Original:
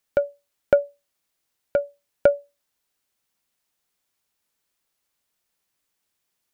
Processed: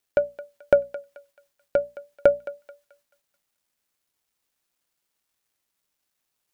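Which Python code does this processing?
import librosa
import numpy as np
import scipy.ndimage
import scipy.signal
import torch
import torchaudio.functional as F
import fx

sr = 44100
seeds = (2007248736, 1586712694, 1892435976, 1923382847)

y = fx.wow_flutter(x, sr, seeds[0], rate_hz=2.1, depth_cents=27.0)
y = fx.hum_notches(y, sr, base_hz=60, count=4)
y = fx.echo_thinned(y, sr, ms=217, feedback_pct=40, hz=740.0, wet_db=-14)
y = fx.quant_dither(y, sr, seeds[1], bits=12, dither='none')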